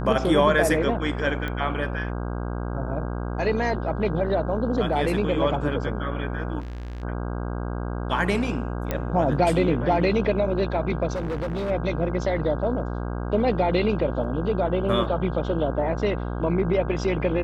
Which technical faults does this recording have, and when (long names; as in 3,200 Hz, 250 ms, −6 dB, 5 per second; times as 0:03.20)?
mains buzz 60 Hz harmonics 27 −29 dBFS
0:01.48: click −18 dBFS
0:06.59–0:07.04: clipping −31.5 dBFS
0:08.91: click −12 dBFS
0:11.15–0:11.71: clipping −24.5 dBFS
0:14.24: drop-out 2.8 ms